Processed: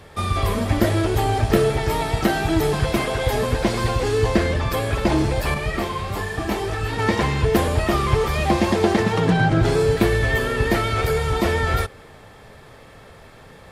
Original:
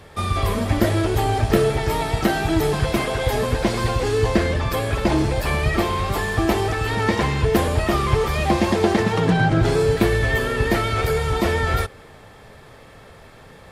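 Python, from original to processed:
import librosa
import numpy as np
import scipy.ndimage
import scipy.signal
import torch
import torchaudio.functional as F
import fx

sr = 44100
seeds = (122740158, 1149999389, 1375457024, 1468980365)

y = fx.detune_double(x, sr, cents=27, at=(5.54, 6.99))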